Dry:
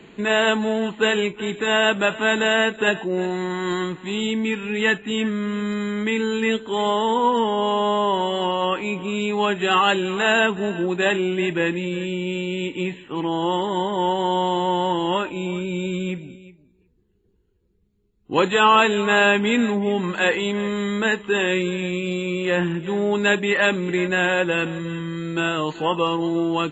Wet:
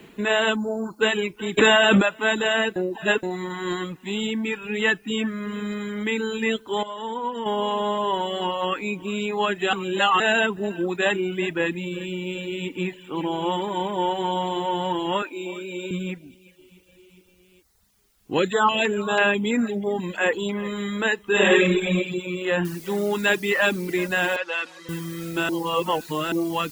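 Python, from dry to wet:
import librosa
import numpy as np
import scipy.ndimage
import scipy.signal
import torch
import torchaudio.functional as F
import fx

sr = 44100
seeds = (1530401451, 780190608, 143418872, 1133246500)

y = fx.cheby1_bandstop(x, sr, low_hz=1500.0, high_hz=4300.0, order=5, at=(0.55, 1.0), fade=0.02)
y = fx.env_flatten(y, sr, amount_pct=100, at=(1.57, 2.01), fade=0.02)
y = fx.echo_throw(y, sr, start_s=11.96, length_s=0.74, ms=410, feedback_pct=85, wet_db=-12.0)
y = fx.highpass(y, sr, hz=250.0, slope=24, at=(15.22, 15.91))
y = fx.filter_held_notch(y, sr, hz=6.1, low_hz=990.0, high_hz=5400.0, at=(18.37, 20.64), fade=0.02)
y = fx.reverb_throw(y, sr, start_s=21.31, length_s=0.66, rt60_s=0.95, drr_db=-6.5)
y = fx.noise_floor_step(y, sr, seeds[0], at_s=22.65, before_db=-63, after_db=-41, tilt_db=0.0)
y = fx.bandpass_edges(y, sr, low_hz=640.0, high_hz=5300.0, at=(24.36, 24.89))
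y = fx.edit(y, sr, fx.reverse_span(start_s=2.76, length_s=0.47),
    fx.clip_gain(start_s=6.83, length_s=0.63, db=-7.0),
    fx.reverse_span(start_s=9.73, length_s=0.47),
    fx.reverse_span(start_s=25.49, length_s=0.83), tone=tone)
y = fx.dereverb_blind(y, sr, rt60_s=0.89)
y = F.gain(torch.from_numpy(y), -1.0).numpy()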